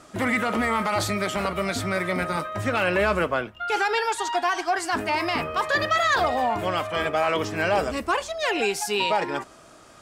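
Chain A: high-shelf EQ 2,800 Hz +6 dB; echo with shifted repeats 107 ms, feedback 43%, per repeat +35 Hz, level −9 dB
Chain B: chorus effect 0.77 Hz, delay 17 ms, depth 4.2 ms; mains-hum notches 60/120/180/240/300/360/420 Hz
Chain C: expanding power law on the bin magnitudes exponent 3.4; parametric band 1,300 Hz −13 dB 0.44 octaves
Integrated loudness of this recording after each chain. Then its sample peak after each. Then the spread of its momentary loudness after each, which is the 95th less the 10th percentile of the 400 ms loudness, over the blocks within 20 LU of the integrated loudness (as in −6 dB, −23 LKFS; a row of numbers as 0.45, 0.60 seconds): −22.5, −27.5, −27.5 LKFS; −7.0, −11.0, −16.0 dBFS; 5, 6, 5 LU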